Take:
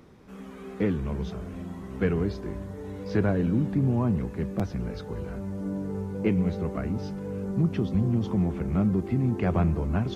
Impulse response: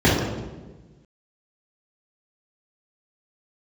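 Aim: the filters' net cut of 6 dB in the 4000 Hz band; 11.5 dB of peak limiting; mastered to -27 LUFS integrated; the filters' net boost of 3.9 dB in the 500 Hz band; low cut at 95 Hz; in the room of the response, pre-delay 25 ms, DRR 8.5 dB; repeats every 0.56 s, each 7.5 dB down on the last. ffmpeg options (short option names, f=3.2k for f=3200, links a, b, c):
-filter_complex "[0:a]highpass=95,equalizer=f=500:t=o:g=5,equalizer=f=4k:t=o:g=-8,alimiter=limit=-22dB:level=0:latency=1,aecho=1:1:560|1120|1680|2240|2800:0.422|0.177|0.0744|0.0312|0.0131,asplit=2[a][b];[1:a]atrim=start_sample=2205,adelay=25[c];[b][c]afir=irnorm=-1:irlink=0,volume=-31.5dB[d];[a][d]amix=inputs=2:normalize=0,volume=0.5dB"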